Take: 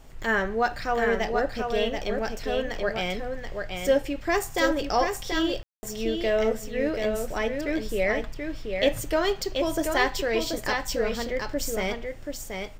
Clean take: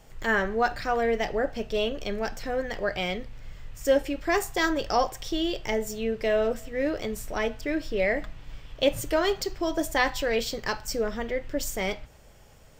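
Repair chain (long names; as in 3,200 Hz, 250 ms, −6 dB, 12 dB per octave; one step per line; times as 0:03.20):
ambience match 0:05.63–0:05.83
broadband denoise 6 dB, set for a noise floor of −37 dBFS
echo removal 732 ms −5 dB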